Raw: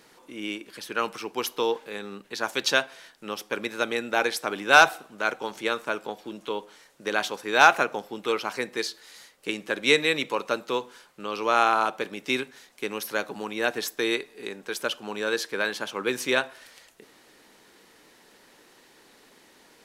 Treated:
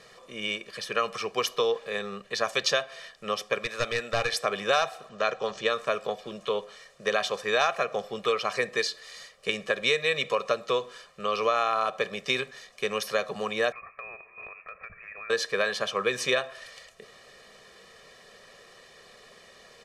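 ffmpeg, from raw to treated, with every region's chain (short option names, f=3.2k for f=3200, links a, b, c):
-filter_complex "[0:a]asettb=1/sr,asplit=3[a][b][c];[a]atrim=end=3.584[d];[b]atrim=start=3.58:end=4.34,asetpts=PTS-STARTPTS,afade=t=in:d=0.004:c=qsin,afade=t=out:st=0.756:d=0.004:c=qsin,lowshelf=f=400:g=-10.5,aeval=exprs='clip(val(0),-1,0.0376)':c=same[e];[c]atrim=start=4.336[f];[d][e]acrossfade=d=0.004:c1=hsin:c2=qsin[g];[g][f]acrossfade=d=0.004:c1=qsin:c2=hsin,asettb=1/sr,asplit=3[h][i][j];[h]atrim=end=5.094[k];[i]atrim=start=5.09:end=5.7,asetpts=PTS-STARTPTS,afade=t=in:d=0.004:c=qsin,afade=t=out:st=0.606:d=0.004:c=qsin,lowpass=f=7.4k:w=0.5412,lowpass=f=7.4k:w=1.3066,bandreject=f=2.2k:w=12[l];[j]atrim=start=5.696[m];[k][l]acrossfade=d=0.004:c1=hsin:c2=qsin[n];[n][m]acrossfade=d=0.004:c1=qsin:c2=hsin,asettb=1/sr,asplit=3[o][p][q];[o]atrim=end=13.724[r];[p]atrim=start=13.72:end=15.3,asetpts=PTS-STARTPTS,afade=t=in:d=0.004:c=qsin,afade=t=out:st=1.576:d=0.004:c=qsin,highpass=f=710:p=1,lowpass=f=2.5k:t=q:w=0.5098,lowpass=f=2.5k:t=q:w=0.6013,lowpass=f=2.5k:t=q:w=0.9,lowpass=f=2.5k:t=q:w=2.563,afreqshift=-2900,acompressor=threshold=-43dB:ratio=8:attack=3.2:release=140:knee=1:detection=peak[s];[q]atrim=start=15.296[t];[r][s]acrossfade=d=0.004:c1=hsin:c2=qsin[u];[u][t]acrossfade=d=0.004:c1=qsin:c2=hsin,lowpass=7.3k,aecho=1:1:1.7:0.93,acompressor=threshold=-23dB:ratio=5,volume=1.5dB"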